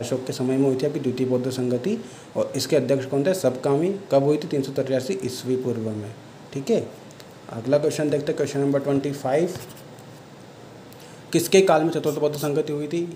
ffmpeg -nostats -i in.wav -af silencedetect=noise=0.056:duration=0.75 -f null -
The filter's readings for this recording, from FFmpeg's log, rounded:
silence_start: 9.57
silence_end: 10.93 | silence_duration: 1.36